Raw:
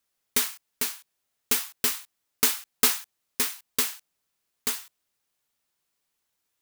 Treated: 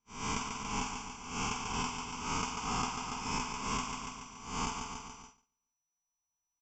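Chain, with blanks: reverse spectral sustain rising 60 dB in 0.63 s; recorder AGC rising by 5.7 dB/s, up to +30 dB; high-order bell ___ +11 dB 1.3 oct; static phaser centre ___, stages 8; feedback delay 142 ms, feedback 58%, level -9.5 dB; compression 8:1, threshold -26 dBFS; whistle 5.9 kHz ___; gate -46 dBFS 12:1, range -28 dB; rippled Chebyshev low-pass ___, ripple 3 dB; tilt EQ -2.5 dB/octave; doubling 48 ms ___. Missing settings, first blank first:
740 Hz, 2.7 kHz, -54 dBFS, 7.6 kHz, -7 dB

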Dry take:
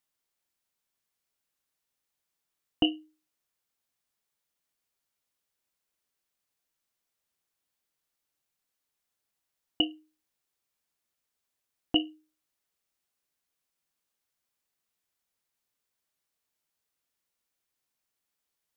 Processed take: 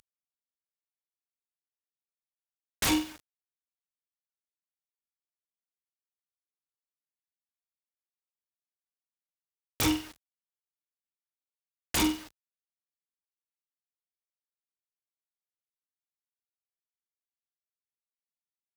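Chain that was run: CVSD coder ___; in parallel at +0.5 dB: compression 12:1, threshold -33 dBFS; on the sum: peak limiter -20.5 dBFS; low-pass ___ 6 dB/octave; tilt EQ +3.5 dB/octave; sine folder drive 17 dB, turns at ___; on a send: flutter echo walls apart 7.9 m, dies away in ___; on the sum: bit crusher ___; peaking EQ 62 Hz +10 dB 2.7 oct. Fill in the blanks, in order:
32 kbps, 1.5 kHz, -23.5 dBFS, 0.37 s, 8-bit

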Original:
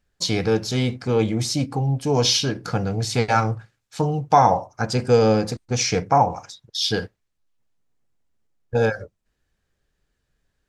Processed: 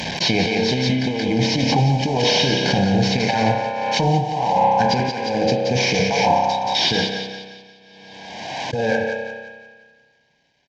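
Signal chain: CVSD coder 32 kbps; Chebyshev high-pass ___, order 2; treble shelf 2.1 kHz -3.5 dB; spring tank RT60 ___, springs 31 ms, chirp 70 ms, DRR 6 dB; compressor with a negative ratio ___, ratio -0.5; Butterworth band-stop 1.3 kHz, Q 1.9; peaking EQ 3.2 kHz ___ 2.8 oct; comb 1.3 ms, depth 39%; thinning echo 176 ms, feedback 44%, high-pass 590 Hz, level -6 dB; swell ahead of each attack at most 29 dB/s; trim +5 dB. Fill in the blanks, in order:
190 Hz, 1.5 s, -25 dBFS, +4.5 dB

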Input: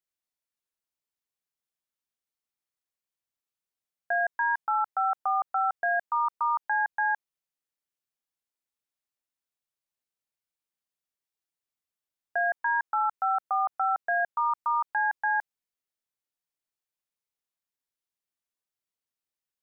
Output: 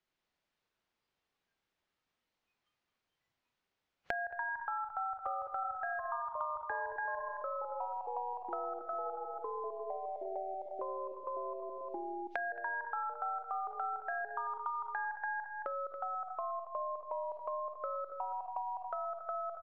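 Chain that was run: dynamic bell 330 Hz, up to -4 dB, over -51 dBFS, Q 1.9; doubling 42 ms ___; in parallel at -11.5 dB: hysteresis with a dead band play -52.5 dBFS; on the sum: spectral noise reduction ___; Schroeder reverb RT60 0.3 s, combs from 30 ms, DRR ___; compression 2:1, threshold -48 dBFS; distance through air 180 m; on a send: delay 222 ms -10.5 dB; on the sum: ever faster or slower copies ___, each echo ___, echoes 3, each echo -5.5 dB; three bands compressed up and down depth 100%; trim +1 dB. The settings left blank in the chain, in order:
-11 dB, 21 dB, 8.5 dB, 93 ms, -4 st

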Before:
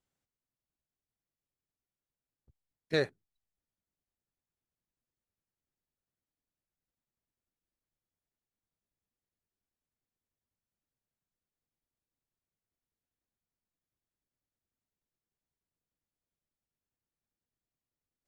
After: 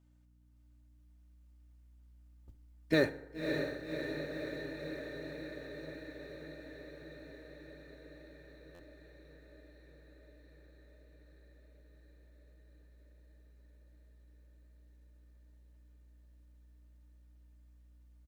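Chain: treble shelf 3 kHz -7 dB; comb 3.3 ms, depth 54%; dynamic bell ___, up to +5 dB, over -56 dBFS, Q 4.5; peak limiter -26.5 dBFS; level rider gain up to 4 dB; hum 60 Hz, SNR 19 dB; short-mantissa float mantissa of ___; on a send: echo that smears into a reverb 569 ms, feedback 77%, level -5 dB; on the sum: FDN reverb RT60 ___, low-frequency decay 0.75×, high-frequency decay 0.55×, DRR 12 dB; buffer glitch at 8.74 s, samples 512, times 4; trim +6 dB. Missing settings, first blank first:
160 Hz, 4-bit, 1 s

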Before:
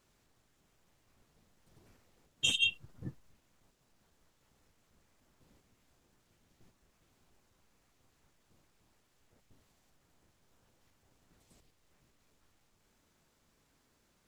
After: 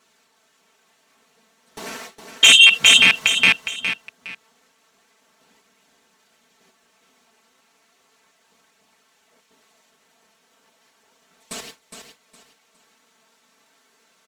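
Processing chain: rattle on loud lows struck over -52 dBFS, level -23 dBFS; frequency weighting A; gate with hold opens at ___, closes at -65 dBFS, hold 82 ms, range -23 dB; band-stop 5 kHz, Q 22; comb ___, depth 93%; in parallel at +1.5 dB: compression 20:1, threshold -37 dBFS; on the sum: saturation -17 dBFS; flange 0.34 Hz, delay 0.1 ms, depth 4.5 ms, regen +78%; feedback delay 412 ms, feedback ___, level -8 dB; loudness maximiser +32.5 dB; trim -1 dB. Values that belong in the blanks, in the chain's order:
-59 dBFS, 4.5 ms, 28%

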